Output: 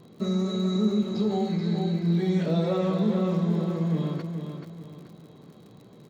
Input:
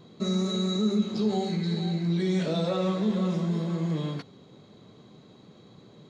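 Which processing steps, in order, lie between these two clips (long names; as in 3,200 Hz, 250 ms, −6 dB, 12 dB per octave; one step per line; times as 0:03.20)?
high-shelf EQ 2,600 Hz −9 dB
surface crackle 57 per second −44 dBFS
repeating echo 431 ms, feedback 37%, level −7 dB
level +1 dB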